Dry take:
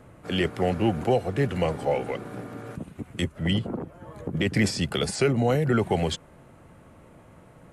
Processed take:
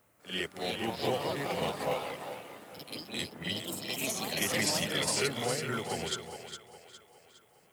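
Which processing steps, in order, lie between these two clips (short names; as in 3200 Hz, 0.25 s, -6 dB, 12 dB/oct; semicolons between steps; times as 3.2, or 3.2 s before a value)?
tilt +3 dB/oct; added noise violet -59 dBFS; split-band echo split 390 Hz, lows 0.24 s, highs 0.41 s, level -6 dB; echoes that change speed 0.392 s, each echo +4 st, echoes 2; reverse echo 49 ms -6 dB; upward expander 1.5:1, over -37 dBFS; gain -7.5 dB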